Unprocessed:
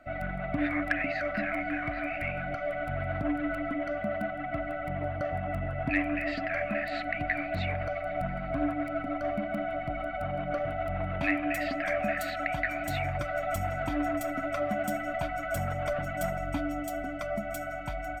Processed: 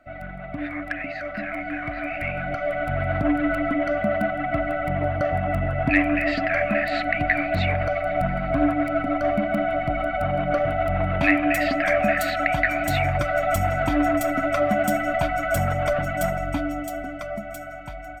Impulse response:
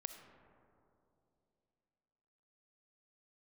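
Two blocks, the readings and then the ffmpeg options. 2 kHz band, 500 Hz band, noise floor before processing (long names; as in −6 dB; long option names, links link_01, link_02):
+8.0 dB, +8.5 dB, −36 dBFS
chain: -af "dynaudnorm=framelen=650:gausssize=7:maxgain=11.5dB,volume=-1.5dB"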